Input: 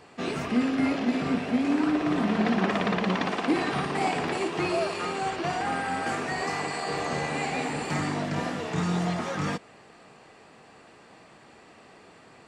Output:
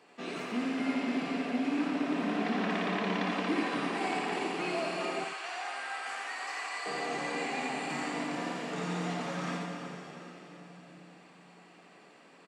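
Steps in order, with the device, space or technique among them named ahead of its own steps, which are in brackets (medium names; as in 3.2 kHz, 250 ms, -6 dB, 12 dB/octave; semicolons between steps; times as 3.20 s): PA in a hall (high-pass 180 Hz 24 dB/octave; peaking EQ 2.6 kHz +3 dB 0.81 oct; delay 84 ms -5 dB; reverberation RT60 4.1 s, pre-delay 85 ms, DRR 2.5 dB); 5.24–6.86 s: high-pass 960 Hz 12 dB/octave; delay 91 ms -9.5 dB; trim -9 dB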